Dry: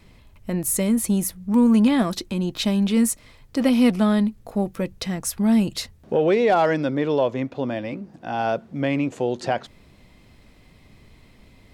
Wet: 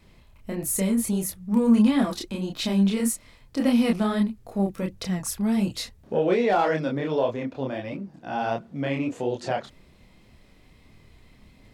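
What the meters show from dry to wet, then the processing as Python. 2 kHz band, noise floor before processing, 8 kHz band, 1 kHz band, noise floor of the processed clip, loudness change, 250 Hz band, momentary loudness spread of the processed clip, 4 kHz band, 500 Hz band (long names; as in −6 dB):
−3.0 dB, −52 dBFS, −3.0 dB, −3.0 dB, −55 dBFS, −3.0 dB, −3.0 dB, 11 LU, −3.0 dB, −3.5 dB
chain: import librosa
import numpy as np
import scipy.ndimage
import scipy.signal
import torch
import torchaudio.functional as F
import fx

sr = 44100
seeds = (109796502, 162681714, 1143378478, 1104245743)

y = fx.chorus_voices(x, sr, voices=2, hz=1.5, base_ms=28, depth_ms=3.0, mix_pct=45)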